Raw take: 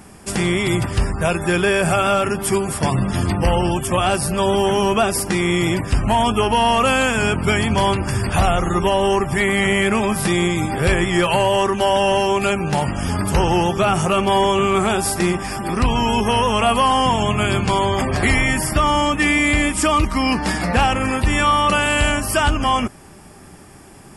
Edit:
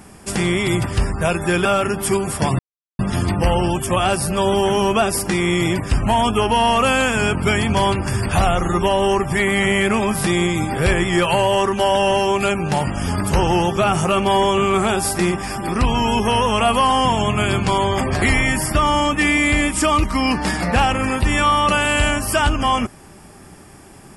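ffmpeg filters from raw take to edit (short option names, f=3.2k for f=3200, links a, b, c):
-filter_complex "[0:a]asplit=3[a][b][c];[a]atrim=end=1.652[d];[b]atrim=start=2.058:end=3,asetpts=PTS-STARTPTS,afade=t=out:st=0.938:d=0.004:c=hsin,apad=pad_dur=0.4[e];[c]atrim=start=3,asetpts=PTS-STARTPTS,afade=t=in:d=0.004:c=hsin[f];[e][f]concat=n=2:v=0:a=1[g];[d][g]acrossfade=d=0.004:c1=hsin:c2=hsin"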